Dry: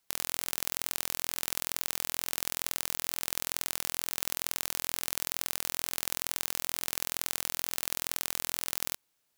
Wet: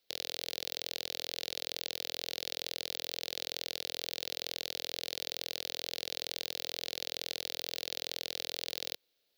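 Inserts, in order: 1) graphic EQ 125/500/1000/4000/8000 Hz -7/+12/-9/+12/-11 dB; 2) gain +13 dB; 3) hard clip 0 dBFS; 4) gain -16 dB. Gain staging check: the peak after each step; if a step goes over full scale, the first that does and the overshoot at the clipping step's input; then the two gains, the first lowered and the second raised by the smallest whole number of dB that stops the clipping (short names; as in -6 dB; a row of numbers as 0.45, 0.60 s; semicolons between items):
-4.0, +9.0, 0.0, -16.0 dBFS; step 2, 9.0 dB; step 2 +4 dB, step 4 -7 dB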